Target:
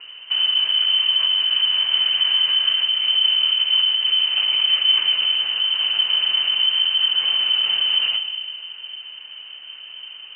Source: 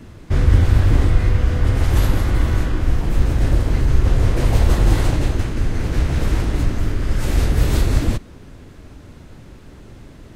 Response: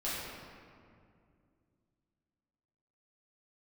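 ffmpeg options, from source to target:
-filter_complex "[0:a]alimiter=limit=0.211:level=0:latency=1:release=77,asplit=2[s0][s1];[1:a]atrim=start_sample=2205,adelay=8[s2];[s1][s2]afir=irnorm=-1:irlink=0,volume=0.211[s3];[s0][s3]amix=inputs=2:normalize=0,lowpass=f=2600:t=q:w=0.5098,lowpass=f=2600:t=q:w=0.6013,lowpass=f=2600:t=q:w=0.9,lowpass=f=2600:t=q:w=2.563,afreqshift=-3100"

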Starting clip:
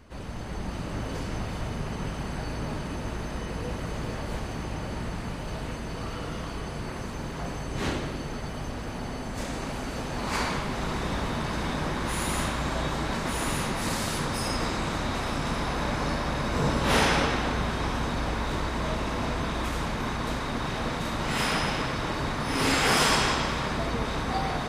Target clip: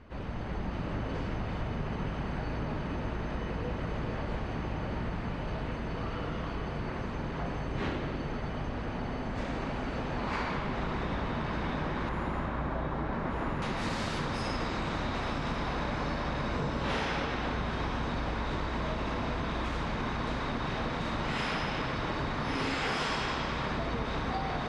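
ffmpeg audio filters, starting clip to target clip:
-af "asetnsamples=n=441:p=0,asendcmd='12.09 lowpass f 1600;13.62 lowpass f 4300',lowpass=3000,acompressor=threshold=0.0355:ratio=5"

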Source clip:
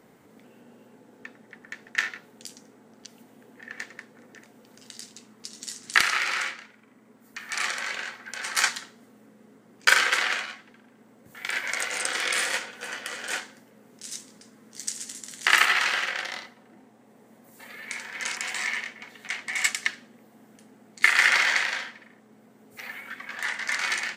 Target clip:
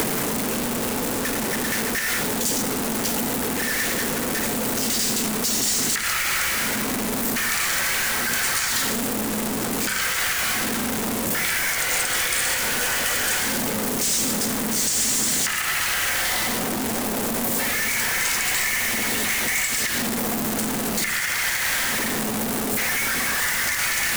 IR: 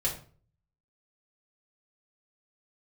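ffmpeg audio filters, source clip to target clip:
-filter_complex "[0:a]aeval=exprs='val(0)+0.5*0.126*sgn(val(0))':c=same,alimiter=limit=0.224:level=0:latency=1:release=134,asplit=2[s0][s1];[1:a]atrim=start_sample=2205,adelay=104[s2];[s1][s2]afir=irnorm=-1:irlink=0,volume=0.0944[s3];[s0][s3]amix=inputs=2:normalize=0,acrossover=split=140|6900[s4][s5][s6];[s4]acompressor=threshold=0.00398:ratio=4[s7];[s5]acompressor=threshold=0.02:ratio=4[s8];[s6]acompressor=threshold=0.0282:ratio=4[s9];[s7][s8][s9]amix=inputs=3:normalize=0,volume=2.51"

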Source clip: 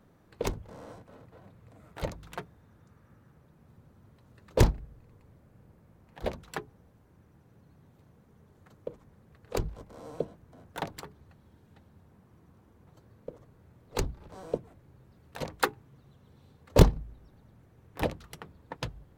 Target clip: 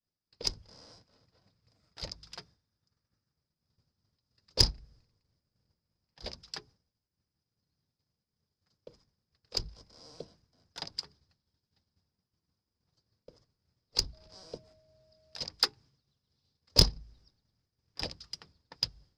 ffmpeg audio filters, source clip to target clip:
-filter_complex "[0:a]lowpass=f=5000:t=q:w=15,lowshelf=f=120:g=6.5,aeval=exprs='1.33*(cos(1*acos(clip(val(0)/1.33,-1,1)))-cos(1*PI/2))+0.0422*(cos(7*acos(clip(val(0)/1.33,-1,1)))-cos(7*PI/2))':c=same,asettb=1/sr,asplit=3[s0][s1][s2];[s0]atrim=end=14.134[s3];[s1]atrim=start=14.13:end=15.41,asetpts=PTS-STARTPTS,afade=t=in:d=0.004:c=qsin,afade=t=out:st=1.276:d=0.004:c=qsin,aeval=exprs='val(0)+0.00316*sin(2*PI*630*n/s)':c=same[s4];[s2]atrim=start=15.406[s5];[s3][s4]acrossfade=d=0.004:c1=hsin:c2=qsin[s6];[s6][s5]acrossfade=d=0.004:c1=qsin:c2=hsin,agate=range=0.0224:threshold=0.00447:ratio=3:detection=peak,crystalizer=i=5:c=0,volume=0.251"

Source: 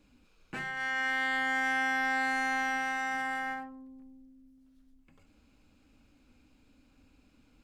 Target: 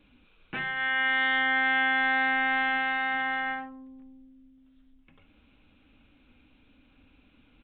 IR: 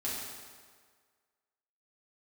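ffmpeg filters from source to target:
-af "crystalizer=i=3.5:c=0,aresample=8000,aresample=44100,volume=1.33"

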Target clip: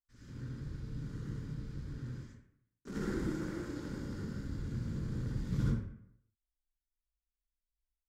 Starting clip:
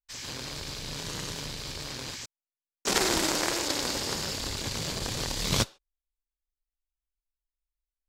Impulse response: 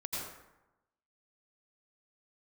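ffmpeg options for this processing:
-filter_complex "[0:a]firequalizer=gain_entry='entry(210,0);entry(710,-26);entry(1400,-13);entry(2600,-27)':delay=0.05:min_phase=1[s0];[1:a]atrim=start_sample=2205,asetrate=61740,aresample=44100[s1];[s0][s1]afir=irnorm=-1:irlink=0"

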